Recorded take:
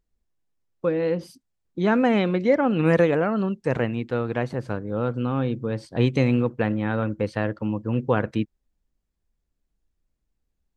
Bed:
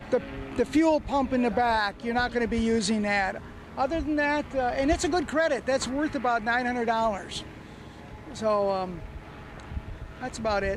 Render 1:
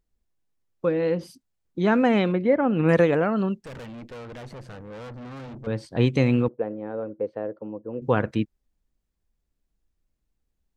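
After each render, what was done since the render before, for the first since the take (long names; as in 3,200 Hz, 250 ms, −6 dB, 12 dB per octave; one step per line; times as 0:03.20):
0:02.32–0:02.89: high-frequency loss of the air 340 metres
0:03.58–0:05.67: tube saturation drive 37 dB, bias 0.55
0:06.48–0:08.02: resonant band-pass 480 Hz, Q 2.1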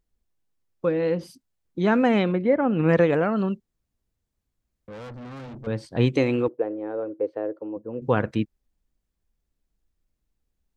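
0:02.23–0:03.10: high-frequency loss of the air 86 metres
0:03.60–0:04.88: fill with room tone
0:06.12–0:07.77: low shelf with overshoot 250 Hz −6 dB, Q 3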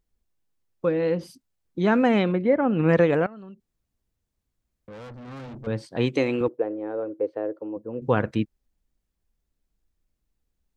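0:03.26–0:05.28: downward compressor 12 to 1, threshold −39 dBFS
0:05.82–0:06.41: high-pass filter 230 Hz 6 dB per octave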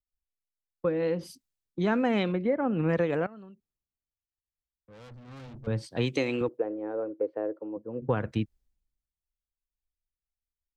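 downward compressor 4 to 1, threshold −25 dBFS, peak gain reduction 9.5 dB
multiband upward and downward expander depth 70%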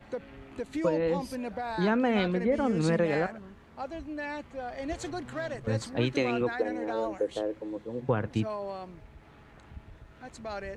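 mix in bed −11 dB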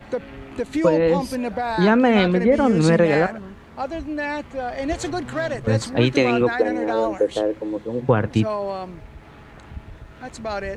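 level +10 dB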